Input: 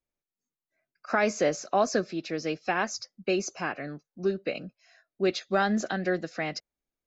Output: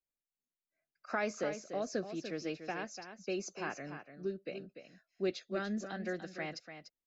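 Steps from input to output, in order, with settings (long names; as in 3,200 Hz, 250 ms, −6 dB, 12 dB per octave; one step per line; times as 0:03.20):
rotating-speaker cabinet horn 0.75 Hz
single-tap delay 293 ms −9.5 dB
level −8 dB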